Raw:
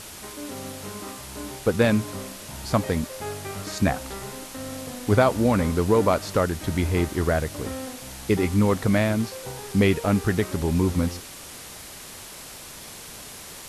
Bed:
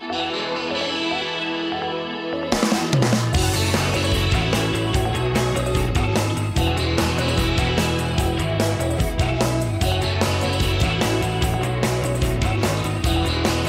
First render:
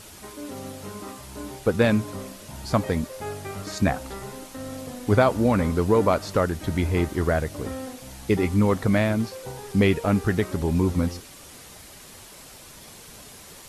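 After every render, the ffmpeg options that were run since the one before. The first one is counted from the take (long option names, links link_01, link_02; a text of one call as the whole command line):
ffmpeg -i in.wav -af "afftdn=noise_reduction=6:noise_floor=-41" out.wav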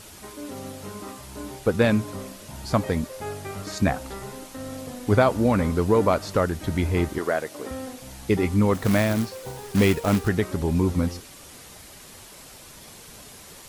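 ffmpeg -i in.wav -filter_complex "[0:a]asettb=1/sr,asplit=3[link_01][link_02][link_03];[link_01]atrim=end=7.184[link_04];[link_02]atrim=start=7.18:end=7.71,asetpts=PTS-STARTPTS,afade=type=in:duration=0.004:curve=qsin,afade=type=out:start_time=0.526:duration=0.004:curve=qsin,highpass=320[link_05];[link_03]atrim=start=7.706[link_06];[link_04][link_05]acrossfade=duration=0.004:curve1=hsin:curve2=qsin[link_07];[link_07][link_06]acrossfade=duration=0.004:curve1=qsin:curve2=hsin,asplit=3[link_08][link_09][link_10];[link_08]afade=type=out:start_time=8.73:duration=0.02[link_11];[link_09]acrusher=bits=3:mode=log:mix=0:aa=0.000001,afade=type=in:start_time=8.73:duration=0.02,afade=type=out:start_time=10.27:duration=0.02[link_12];[link_10]afade=type=in:start_time=10.27:duration=0.02[link_13];[link_11][link_12][link_13]amix=inputs=3:normalize=0" out.wav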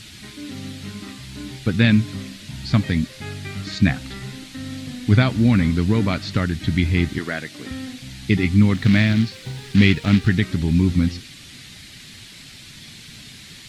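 ffmpeg -i in.wav -filter_complex "[0:a]acrossover=split=4200[link_01][link_02];[link_02]acompressor=threshold=-55dB:ratio=4:attack=1:release=60[link_03];[link_01][link_03]amix=inputs=2:normalize=0,equalizer=frequency=125:width_type=o:width=1:gain=9,equalizer=frequency=250:width_type=o:width=1:gain=6,equalizer=frequency=500:width_type=o:width=1:gain=-10,equalizer=frequency=1000:width_type=o:width=1:gain=-8,equalizer=frequency=2000:width_type=o:width=1:gain=7,equalizer=frequency=4000:width_type=o:width=1:gain=11,equalizer=frequency=8000:width_type=o:width=1:gain=6" out.wav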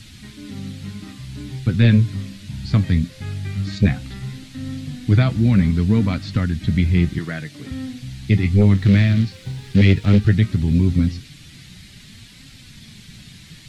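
ffmpeg -i in.wav -filter_complex "[0:a]flanger=delay=3.6:depth=8:regen=62:speed=0.16:shape=triangular,acrossover=split=190|5100[link_01][link_02][link_03];[link_01]aeval=exprs='0.316*sin(PI/2*2*val(0)/0.316)':channel_layout=same[link_04];[link_04][link_02][link_03]amix=inputs=3:normalize=0" out.wav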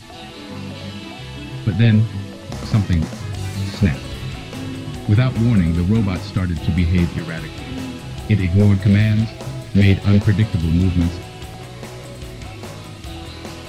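ffmpeg -i in.wav -i bed.wav -filter_complex "[1:a]volume=-12.5dB[link_01];[0:a][link_01]amix=inputs=2:normalize=0" out.wav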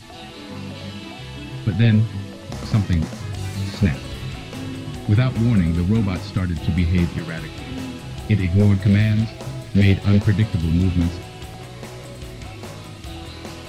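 ffmpeg -i in.wav -af "volume=-2dB" out.wav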